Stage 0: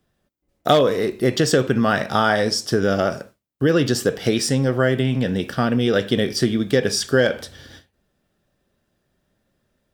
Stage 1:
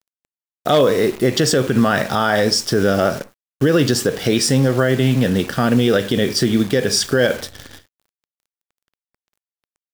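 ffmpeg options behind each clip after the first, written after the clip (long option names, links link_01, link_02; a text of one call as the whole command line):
ffmpeg -i in.wav -af "acrusher=bits=7:dc=4:mix=0:aa=0.000001,alimiter=level_in=9dB:limit=-1dB:release=50:level=0:latency=1,volume=-4dB" out.wav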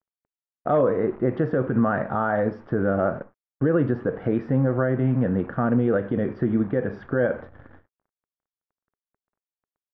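ffmpeg -i in.wav -af "lowpass=frequency=1500:width=0.5412,lowpass=frequency=1500:width=1.3066,bandreject=frequency=410:width=12,volume=-5.5dB" out.wav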